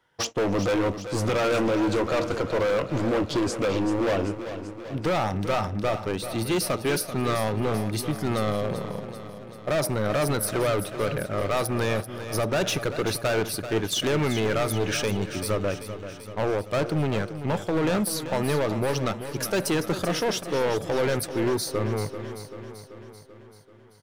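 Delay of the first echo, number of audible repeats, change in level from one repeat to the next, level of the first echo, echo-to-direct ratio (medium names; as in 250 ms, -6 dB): 387 ms, 6, -4.5 dB, -11.0 dB, -9.0 dB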